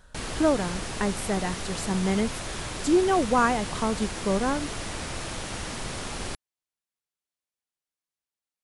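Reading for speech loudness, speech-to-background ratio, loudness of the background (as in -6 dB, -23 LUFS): -26.5 LUFS, 7.5 dB, -34.0 LUFS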